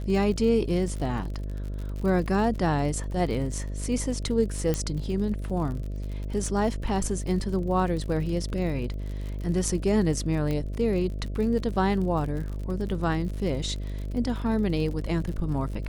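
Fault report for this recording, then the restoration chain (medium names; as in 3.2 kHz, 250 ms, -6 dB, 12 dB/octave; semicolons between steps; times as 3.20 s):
buzz 50 Hz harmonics 13 -32 dBFS
crackle 52 per s -34 dBFS
4.74 s: pop -13 dBFS
10.51 s: pop -18 dBFS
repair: de-click; de-hum 50 Hz, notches 13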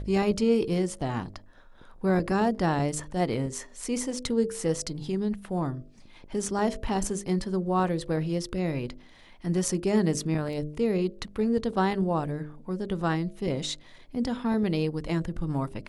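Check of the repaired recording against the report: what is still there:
nothing left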